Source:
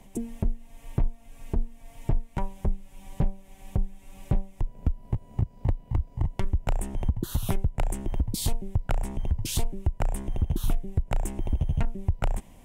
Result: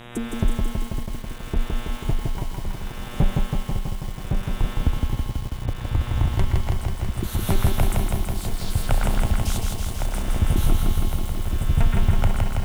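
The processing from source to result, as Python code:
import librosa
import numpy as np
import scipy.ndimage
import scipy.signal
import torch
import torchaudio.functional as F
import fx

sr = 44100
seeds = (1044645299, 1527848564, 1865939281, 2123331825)

p1 = fx.dmg_buzz(x, sr, base_hz=120.0, harmonics=32, level_db=-44.0, tilt_db=-3, odd_only=False)
p2 = p1 + fx.echo_stepped(p1, sr, ms=120, hz=1600.0, octaves=1.4, feedback_pct=70, wet_db=-0.5, dry=0)
p3 = fx.tremolo_shape(p2, sr, shape='triangle', hz=0.69, depth_pct=90)
p4 = fx.echo_crushed(p3, sr, ms=163, feedback_pct=80, bits=8, wet_db=-3)
y = p4 * 10.0 ** (6.0 / 20.0)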